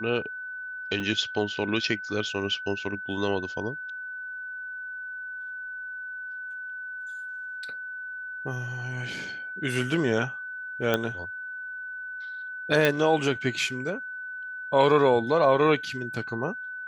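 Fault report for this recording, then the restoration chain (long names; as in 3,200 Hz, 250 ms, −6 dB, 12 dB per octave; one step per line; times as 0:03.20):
whistle 1,500 Hz −34 dBFS
0:01.00: drop-out 2.4 ms
0:10.94: click −11 dBFS
0:12.85: click −9 dBFS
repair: click removal
notch filter 1,500 Hz, Q 30
repair the gap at 0:01.00, 2.4 ms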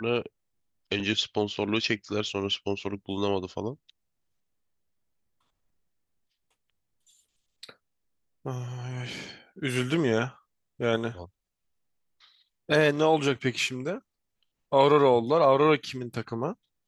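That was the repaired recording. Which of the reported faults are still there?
none of them is left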